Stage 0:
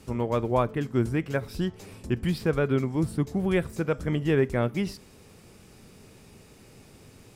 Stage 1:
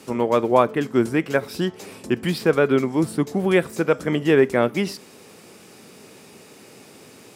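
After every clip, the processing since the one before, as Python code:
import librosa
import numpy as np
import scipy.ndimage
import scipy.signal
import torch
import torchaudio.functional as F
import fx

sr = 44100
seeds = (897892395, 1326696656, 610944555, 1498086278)

y = scipy.signal.sosfilt(scipy.signal.butter(2, 240.0, 'highpass', fs=sr, output='sos'), x)
y = y * 10.0 ** (8.5 / 20.0)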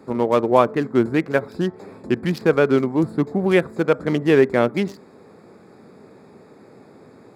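y = fx.wiener(x, sr, points=15)
y = y * 10.0 ** (1.5 / 20.0)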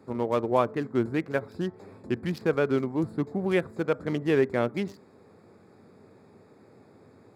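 y = fx.peak_eq(x, sr, hz=96.0, db=9.5, octaves=0.47)
y = y * 10.0 ** (-8.5 / 20.0)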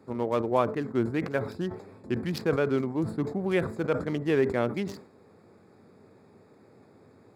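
y = fx.sustainer(x, sr, db_per_s=110.0)
y = y * 10.0 ** (-1.5 / 20.0)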